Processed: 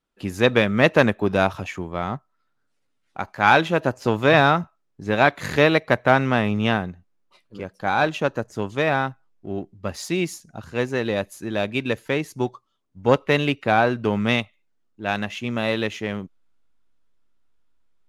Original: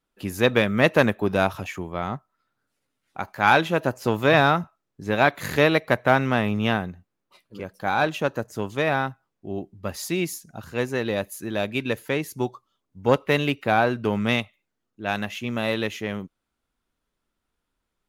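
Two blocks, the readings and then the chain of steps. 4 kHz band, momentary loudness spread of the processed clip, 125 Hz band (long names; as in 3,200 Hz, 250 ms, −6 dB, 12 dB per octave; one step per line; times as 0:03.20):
+1.5 dB, 16 LU, +2.0 dB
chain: low-pass filter 8,700 Hz 12 dB per octave
in parallel at −8 dB: slack as between gear wheels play −36 dBFS
on the sum: level −1 dB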